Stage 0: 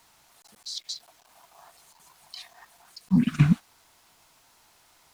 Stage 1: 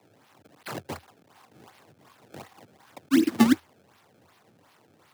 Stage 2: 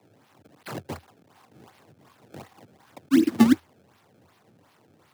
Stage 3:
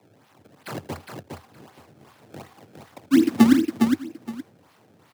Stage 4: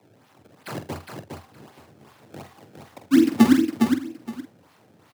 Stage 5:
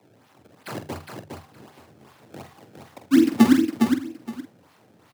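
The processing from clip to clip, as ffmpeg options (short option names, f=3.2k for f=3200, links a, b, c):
-af "acrusher=samples=27:mix=1:aa=0.000001:lfo=1:lforange=43.2:lforate=2.7,afreqshift=82"
-af "lowshelf=f=440:g=5.5,volume=-2dB"
-af "aecho=1:1:79|410|877:0.126|0.562|0.112,volume=2dB"
-filter_complex "[0:a]asplit=2[a][b];[b]adelay=46,volume=-9dB[c];[a][c]amix=inputs=2:normalize=0"
-af "bandreject=f=50:t=h:w=6,bandreject=f=100:t=h:w=6,bandreject=f=150:t=h:w=6"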